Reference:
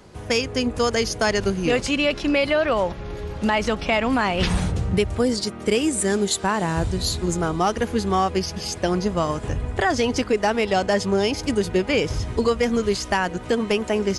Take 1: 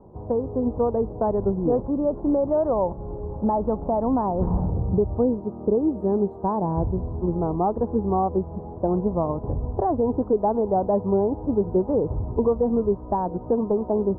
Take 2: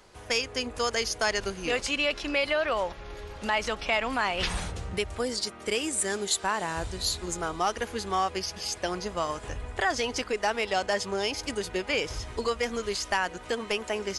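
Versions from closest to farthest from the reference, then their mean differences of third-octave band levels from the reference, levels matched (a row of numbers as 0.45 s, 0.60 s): 2, 1; 4.0 dB, 12.5 dB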